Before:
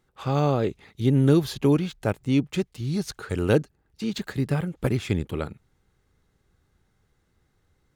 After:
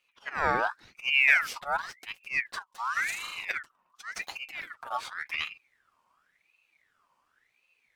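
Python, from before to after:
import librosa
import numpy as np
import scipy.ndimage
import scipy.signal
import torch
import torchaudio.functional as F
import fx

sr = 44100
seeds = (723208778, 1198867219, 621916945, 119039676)

y = fx.auto_swell(x, sr, attack_ms=174.0)
y = fx.notch_comb(y, sr, f0_hz=180.0)
y = fx.room_flutter(y, sr, wall_m=6.8, rt60_s=0.88, at=(2.92, 3.45))
y = fx.ring_lfo(y, sr, carrier_hz=1800.0, swing_pct=45, hz=0.91)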